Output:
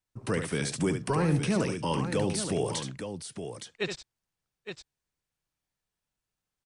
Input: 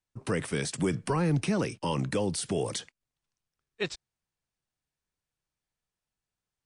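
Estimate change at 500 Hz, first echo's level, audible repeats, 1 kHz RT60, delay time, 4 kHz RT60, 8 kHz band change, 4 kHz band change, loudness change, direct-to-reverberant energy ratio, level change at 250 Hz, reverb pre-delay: +1.0 dB, -7.5 dB, 2, none, 71 ms, none, +1.0 dB, +1.0 dB, 0.0 dB, none, +1.0 dB, none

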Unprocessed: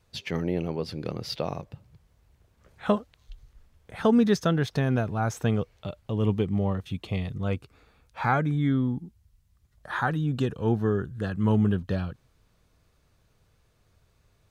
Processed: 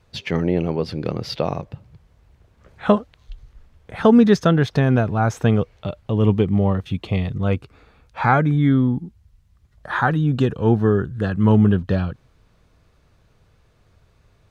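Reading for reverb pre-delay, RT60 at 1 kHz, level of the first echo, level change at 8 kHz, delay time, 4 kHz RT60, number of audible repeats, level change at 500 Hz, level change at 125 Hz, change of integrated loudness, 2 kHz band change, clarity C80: none, none, none, n/a, none, none, none, +8.0 dB, +8.0 dB, +8.0 dB, +7.0 dB, none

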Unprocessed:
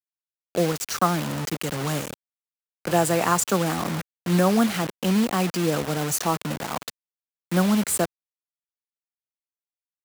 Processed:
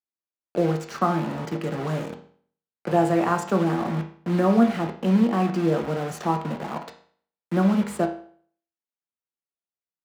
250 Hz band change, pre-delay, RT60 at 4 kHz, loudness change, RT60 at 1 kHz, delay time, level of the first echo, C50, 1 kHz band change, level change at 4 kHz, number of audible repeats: +1.5 dB, 5 ms, 0.50 s, 0.0 dB, 0.50 s, none, none, 10.0 dB, -0.5 dB, -9.5 dB, none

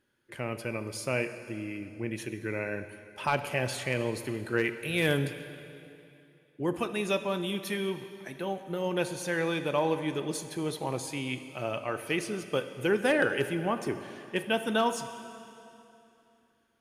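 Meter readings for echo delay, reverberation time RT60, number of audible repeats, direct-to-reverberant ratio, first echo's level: none, 2.8 s, none, 9.5 dB, none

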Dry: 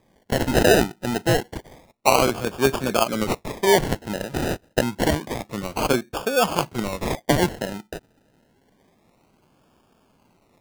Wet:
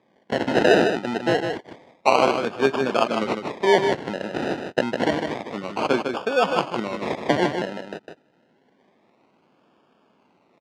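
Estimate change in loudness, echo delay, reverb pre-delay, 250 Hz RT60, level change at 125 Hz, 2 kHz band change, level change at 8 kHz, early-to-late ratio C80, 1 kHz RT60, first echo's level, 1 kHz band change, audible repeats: 0.0 dB, 0.154 s, none, none, -7.0 dB, +0.5 dB, -12.0 dB, none, none, -6.0 dB, +1.0 dB, 1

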